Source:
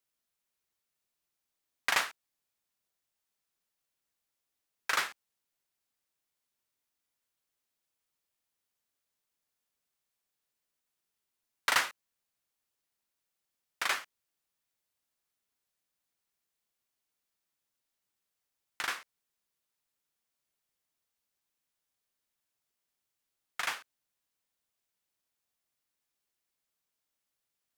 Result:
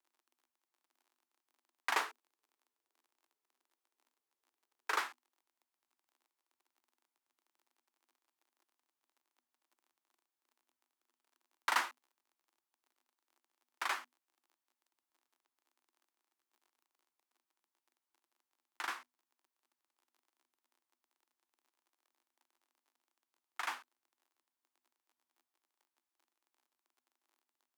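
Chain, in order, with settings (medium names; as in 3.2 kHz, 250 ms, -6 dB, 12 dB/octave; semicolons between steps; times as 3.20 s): 1.95–4.99 s: peaking EQ 430 Hz +13.5 dB 0.4 oct; crackle 39 per s -51 dBFS; rippled Chebyshev high-pass 240 Hz, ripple 9 dB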